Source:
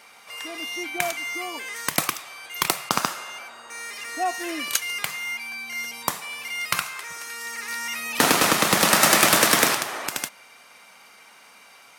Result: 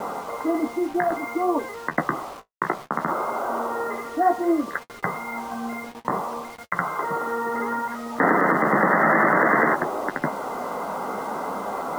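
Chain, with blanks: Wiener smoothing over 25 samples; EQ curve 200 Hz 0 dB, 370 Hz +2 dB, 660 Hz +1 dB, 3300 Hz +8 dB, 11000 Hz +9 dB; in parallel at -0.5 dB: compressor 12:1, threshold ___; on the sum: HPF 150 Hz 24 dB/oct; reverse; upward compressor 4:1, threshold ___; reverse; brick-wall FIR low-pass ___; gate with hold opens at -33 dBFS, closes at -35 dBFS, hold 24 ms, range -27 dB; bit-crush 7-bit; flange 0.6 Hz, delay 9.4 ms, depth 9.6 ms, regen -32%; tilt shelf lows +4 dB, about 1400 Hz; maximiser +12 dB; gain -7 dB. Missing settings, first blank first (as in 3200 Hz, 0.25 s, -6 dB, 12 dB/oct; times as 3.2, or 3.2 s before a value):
-28 dBFS, -20 dBFS, 2100 Hz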